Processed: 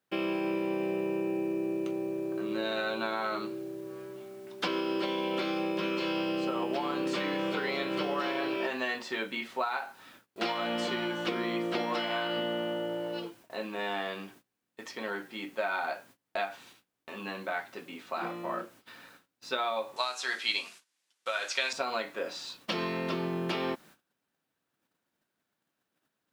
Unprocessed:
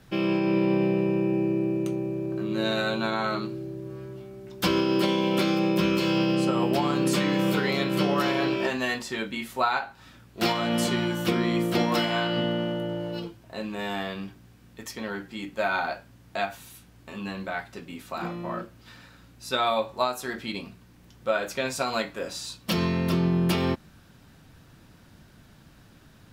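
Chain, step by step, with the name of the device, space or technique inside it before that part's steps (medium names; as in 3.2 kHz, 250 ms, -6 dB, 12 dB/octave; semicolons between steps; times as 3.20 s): baby monitor (band-pass 330–4100 Hz; compression 6:1, threshold -28 dBFS, peak gain reduction 9 dB; white noise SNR 30 dB; gate -54 dBFS, range -25 dB); 19.96–21.73 s: frequency weighting ITU-R 468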